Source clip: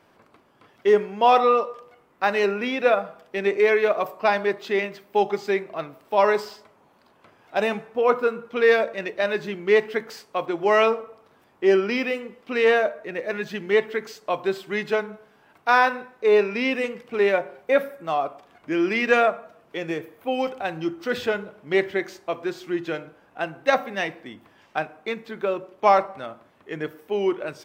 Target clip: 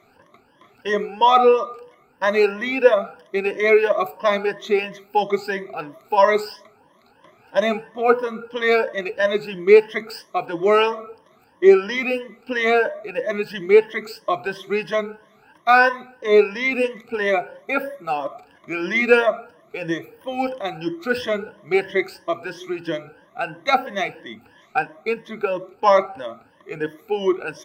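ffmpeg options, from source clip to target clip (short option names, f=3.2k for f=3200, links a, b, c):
-af "afftfilt=real='re*pow(10,19/40*sin(2*PI*(1.2*log(max(b,1)*sr/1024/100)/log(2)-(3)*(pts-256)/sr)))':imag='im*pow(10,19/40*sin(2*PI*(1.2*log(max(b,1)*sr/1024/100)/log(2)-(3)*(pts-256)/sr)))':win_size=1024:overlap=0.75,volume=-1dB"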